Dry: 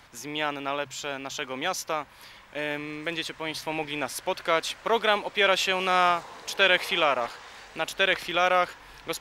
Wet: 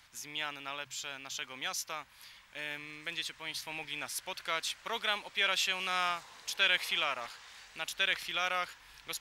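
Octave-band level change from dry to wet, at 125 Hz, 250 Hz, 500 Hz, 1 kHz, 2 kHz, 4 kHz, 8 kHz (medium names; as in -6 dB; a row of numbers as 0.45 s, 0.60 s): -13.0 dB, -16.0 dB, -16.5 dB, -11.5 dB, -7.0 dB, -4.5 dB, -3.0 dB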